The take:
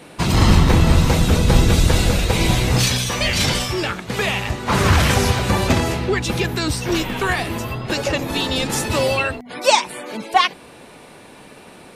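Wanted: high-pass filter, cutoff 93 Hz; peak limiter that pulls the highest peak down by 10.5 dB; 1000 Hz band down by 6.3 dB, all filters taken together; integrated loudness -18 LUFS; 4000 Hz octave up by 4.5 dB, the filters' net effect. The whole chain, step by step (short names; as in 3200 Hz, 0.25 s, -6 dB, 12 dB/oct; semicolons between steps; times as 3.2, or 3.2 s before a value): HPF 93 Hz; bell 1000 Hz -8.5 dB; bell 4000 Hz +6 dB; gain +2.5 dB; limiter -8 dBFS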